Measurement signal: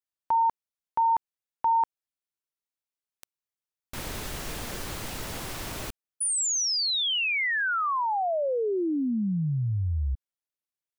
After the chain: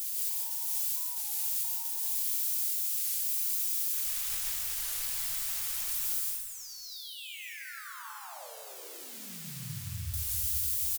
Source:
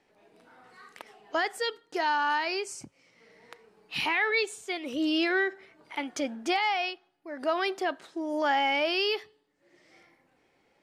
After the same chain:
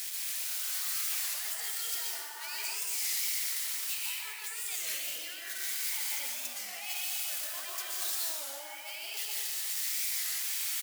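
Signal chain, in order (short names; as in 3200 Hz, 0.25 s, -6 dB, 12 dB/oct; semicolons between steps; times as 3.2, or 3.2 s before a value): switching spikes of -24 dBFS; low shelf 390 Hz -6 dB; negative-ratio compressor -32 dBFS, ratio -0.5; passive tone stack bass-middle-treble 10-0-10; echo 0.754 s -21.5 dB; plate-style reverb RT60 2.2 s, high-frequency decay 0.55×, pre-delay 0.11 s, DRR -4.5 dB; flange 1.5 Hz, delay 0.4 ms, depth 8.8 ms, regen -74%; record warp 33 1/3 rpm, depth 160 cents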